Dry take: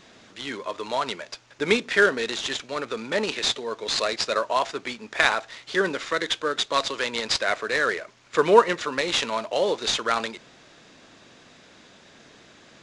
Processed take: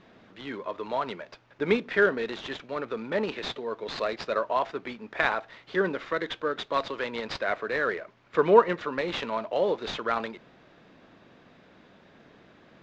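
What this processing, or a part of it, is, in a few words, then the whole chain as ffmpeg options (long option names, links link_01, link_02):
phone in a pocket: -af "lowpass=3800,equalizer=frequency=180:width_type=o:width=0.29:gain=3,highshelf=frequency=2200:gain=-10,volume=-1.5dB"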